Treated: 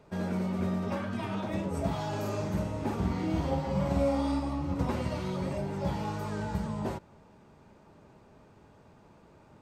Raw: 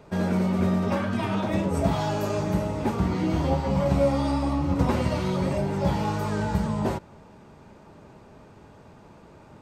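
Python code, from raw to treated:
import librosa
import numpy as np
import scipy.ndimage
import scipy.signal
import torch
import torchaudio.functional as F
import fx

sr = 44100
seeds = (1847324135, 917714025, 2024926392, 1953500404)

y = fx.doubler(x, sr, ms=47.0, db=-3.0, at=(2.08, 4.4))
y = y * librosa.db_to_amplitude(-7.5)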